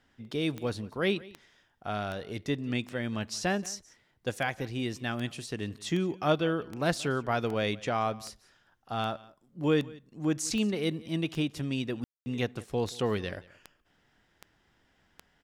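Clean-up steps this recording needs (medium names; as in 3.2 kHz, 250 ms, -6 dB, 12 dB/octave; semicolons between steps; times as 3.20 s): de-click; room tone fill 12.04–12.26 s; inverse comb 178 ms -21.5 dB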